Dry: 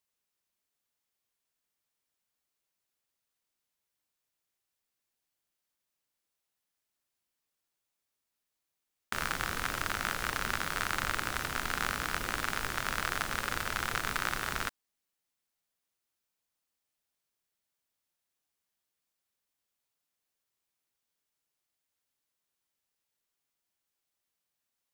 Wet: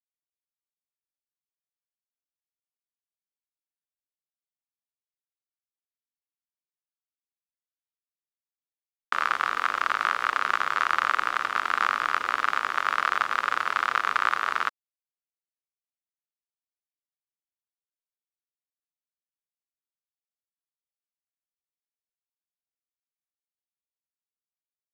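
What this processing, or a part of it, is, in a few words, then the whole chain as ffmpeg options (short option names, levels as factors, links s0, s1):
pocket radio on a weak battery: -af "highpass=380,lowpass=3700,aeval=exprs='sgn(val(0))*max(abs(val(0))-0.00335,0)':c=same,equalizer=f=1200:t=o:w=0.53:g=9,volume=1.88"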